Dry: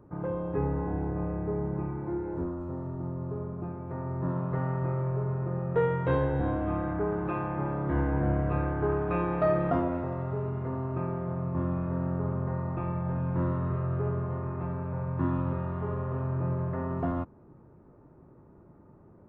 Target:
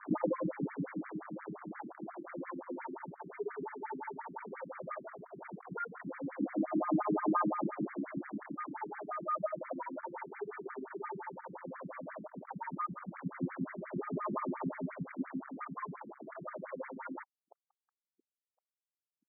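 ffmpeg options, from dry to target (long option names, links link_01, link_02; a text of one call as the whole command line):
ffmpeg -i in.wav -filter_complex "[0:a]asettb=1/sr,asplit=3[link_01][link_02][link_03];[link_01]atrim=end=3.054[link_04];[link_02]atrim=start=3.05:end=4.55,asetpts=PTS-STARTPTS,afade=type=in:duration=0.004:curve=qsin,afade=type=out:start_time=1.496:duration=0.004:curve=qsin,aecho=1:1:6.9:0.62,atrim=end_sample=66150[link_05];[link_03]atrim=start=4.546[link_06];[link_04][link_05]acrossfade=duration=0.004:curve1=hsin:curve2=qsin[link_07];[link_07][link_06]acrossfade=duration=0.004:curve1=qsin:curve2=hsin,acompressor=threshold=-41dB:ratio=16,aphaser=in_gain=1:out_gain=1:delay=2.4:decay=0.7:speed=0.14:type=sinusoidal,aecho=1:1:554|1108|1662|2216:0.188|0.0829|0.0365|0.016,afftfilt=real='re*gte(hypot(re,im),0.0158)':imag='im*gte(hypot(re,im),0.0158)':win_size=1024:overlap=0.75,equalizer=frequency=100:width_type=o:width=0.67:gain=-6,equalizer=frequency=400:width_type=o:width=0.67:gain=-5,equalizer=frequency=2500:width_type=o:width=0.67:gain=8,acrusher=bits=7:mix=0:aa=0.5,adynamicequalizer=threshold=0.00126:dfrequency=470:dqfactor=2.2:tfrequency=470:tqfactor=2.2:attack=5:release=100:ratio=0.375:range=3.5:mode=cutabove:tftype=bell,afftfilt=real='re*between(b*sr/1024,240*pow(1700/240,0.5+0.5*sin(2*PI*5.7*pts/sr))/1.41,240*pow(1700/240,0.5+0.5*sin(2*PI*5.7*pts/sr))*1.41)':imag='im*between(b*sr/1024,240*pow(1700/240,0.5+0.5*sin(2*PI*5.7*pts/sr))/1.41,240*pow(1700/240,0.5+0.5*sin(2*PI*5.7*pts/sr))*1.41)':win_size=1024:overlap=0.75,volume=14.5dB" out.wav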